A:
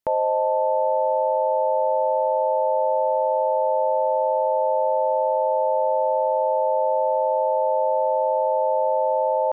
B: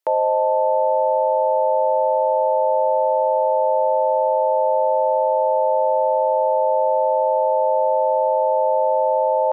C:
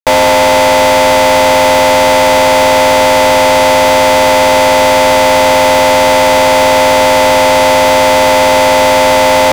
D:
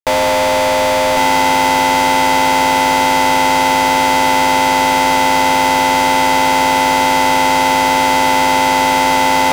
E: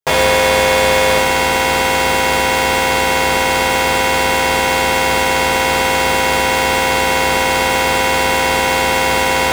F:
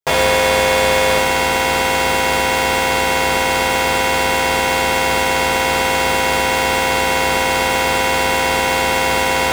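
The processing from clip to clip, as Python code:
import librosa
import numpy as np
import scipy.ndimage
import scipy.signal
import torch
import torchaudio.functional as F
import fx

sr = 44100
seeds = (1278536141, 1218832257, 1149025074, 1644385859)

y1 = scipy.signal.sosfilt(scipy.signal.cheby2(4, 40, 170.0, 'highpass', fs=sr, output='sos'), x)
y1 = y1 * librosa.db_to_amplitude(3.0)
y2 = fx.fuzz(y1, sr, gain_db=40.0, gate_db=-46.0)
y2 = y2 * librosa.db_to_amplitude(6.5)
y3 = y2 + 10.0 ** (-4.0 / 20.0) * np.pad(y2, (int(1100 * sr / 1000.0), 0))[:len(y2)]
y3 = y3 * librosa.db_to_amplitude(-6.0)
y4 = fx.rider(y3, sr, range_db=10, speed_s=0.5)
y4 = 10.0 ** (-12.5 / 20.0) * np.tanh(y4 / 10.0 ** (-12.5 / 20.0))
y4 = fx.rev_fdn(y4, sr, rt60_s=0.45, lf_ratio=1.55, hf_ratio=0.65, size_ms=43.0, drr_db=-6.5)
y4 = y4 * librosa.db_to_amplitude(-1.0)
y5 = fx.comb_fb(y4, sr, f0_hz=690.0, decay_s=0.29, harmonics='all', damping=0.0, mix_pct=50)
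y5 = y5 * librosa.db_to_amplitude(4.0)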